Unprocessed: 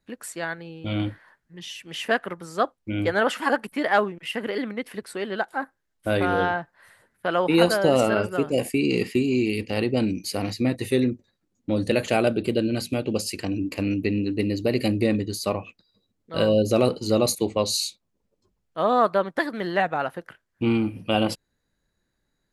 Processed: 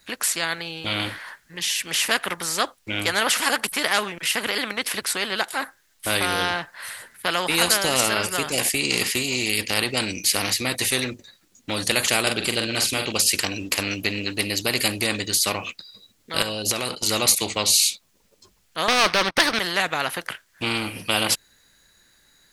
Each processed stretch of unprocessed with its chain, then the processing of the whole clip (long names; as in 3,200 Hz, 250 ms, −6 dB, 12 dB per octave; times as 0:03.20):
0:12.21–0:13.12: low-pass filter 9,400 Hz + double-tracking delay 44 ms −7 dB
0:16.42–0:17.08: noise gate −32 dBFS, range −14 dB + downward compressor, threshold −24 dBFS
0:18.88–0:19.59: leveller curve on the samples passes 3 + Savitzky-Golay smoothing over 15 samples
whole clip: tilt shelving filter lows −8.5 dB, about 1,100 Hz; every bin compressed towards the loudest bin 2 to 1